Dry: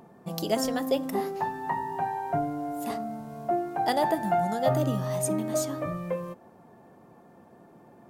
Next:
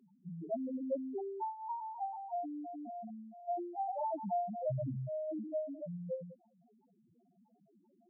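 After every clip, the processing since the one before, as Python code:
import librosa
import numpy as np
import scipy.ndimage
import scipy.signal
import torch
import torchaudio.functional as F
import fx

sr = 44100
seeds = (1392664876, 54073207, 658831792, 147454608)

y = fx.spec_topn(x, sr, count=1)
y = F.gain(torch.from_numpy(y), -3.0).numpy()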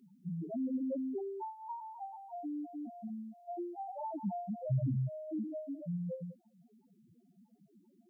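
y = fx.peak_eq(x, sr, hz=690.0, db=-14.0, octaves=1.5)
y = F.gain(torch.from_numpy(y), 7.5).numpy()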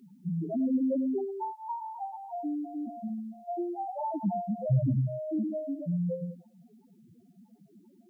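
y = x + 10.0 ** (-14.5 / 20.0) * np.pad(x, (int(103 * sr / 1000.0), 0))[:len(x)]
y = F.gain(torch.from_numpy(y), 7.0).numpy()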